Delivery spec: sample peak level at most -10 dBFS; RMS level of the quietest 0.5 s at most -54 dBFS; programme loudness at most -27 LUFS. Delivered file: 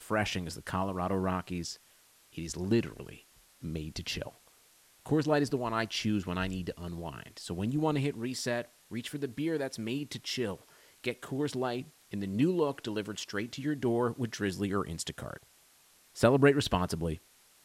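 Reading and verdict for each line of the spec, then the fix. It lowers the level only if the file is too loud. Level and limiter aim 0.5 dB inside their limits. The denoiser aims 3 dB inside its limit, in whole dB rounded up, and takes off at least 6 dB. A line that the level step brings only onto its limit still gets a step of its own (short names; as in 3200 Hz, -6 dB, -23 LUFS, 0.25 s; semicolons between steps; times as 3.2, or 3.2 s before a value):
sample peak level -11.0 dBFS: OK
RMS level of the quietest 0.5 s -63 dBFS: OK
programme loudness -32.5 LUFS: OK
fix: none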